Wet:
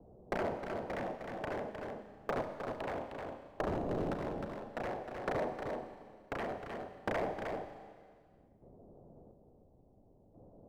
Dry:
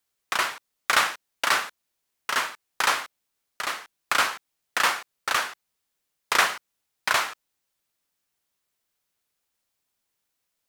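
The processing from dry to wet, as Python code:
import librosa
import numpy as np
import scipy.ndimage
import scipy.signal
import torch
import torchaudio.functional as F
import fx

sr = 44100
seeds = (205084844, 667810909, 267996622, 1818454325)

p1 = fx.delta_mod(x, sr, bps=16000, step_db=-34.5, at=(3.62, 4.22))
p2 = scipy.signal.sosfilt(scipy.signal.butter(6, 690.0, 'lowpass', fs=sr, output='sos'), p1)
p3 = fx.low_shelf(p2, sr, hz=310.0, db=7.0)
p4 = fx.over_compress(p3, sr, threshold_db=-42.0, ratio=-1.0)
p5 = p3 + (p4 * librosa.db_to_amplitude(-1.0))
p6 = 10.0 ** (-30.0 / 20.0) * (np.abs((p5 / 10.0 ** (-30.0 / 20.0) + 3.0) % 4.0 - 2.0) - 1.0)
p7 = fx.chopper(p6, sr, hz=0.58, depth_pct=65, duty_pct=40)
p8 = p7 + fx.echo_single(p7, sr, ms=309, db=-8.5, dry=0)
p9 = fx.rev_schroeder(p8, sr, rt60_s=1.1, comb_ms=30, drr_db=9.0)
p10 = fx.band_squash(p9, sr, depth_pct=70)
y = p10 * librosa.db_to_amplitude(4.0)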